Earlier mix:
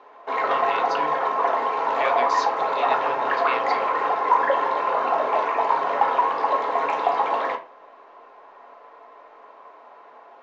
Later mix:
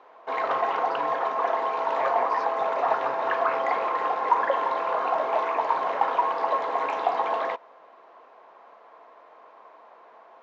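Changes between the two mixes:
speech: add moving average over 13 samples
reverb: off

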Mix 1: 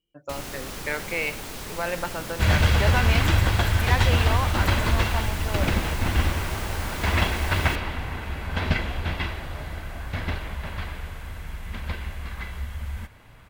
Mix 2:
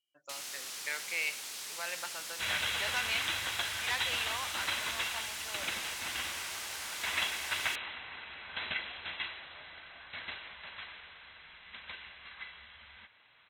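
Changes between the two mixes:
second sound: add linear-phase brick-wall low-pass 4,100 Hz
master: add resonant band-pass 6,400 Hz, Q 0.6

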